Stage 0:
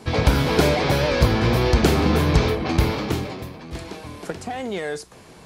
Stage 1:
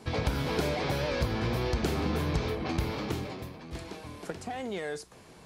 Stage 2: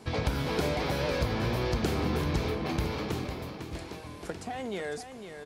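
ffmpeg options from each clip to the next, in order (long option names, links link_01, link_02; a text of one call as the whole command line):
ffmpeg -i in.wav -af "acompressor=threshold=-22dB:ratio=2,volume=-7dB" out.wav
ffmpeg -i in.wav -af "aecho=1:1:502:0.355" out.wav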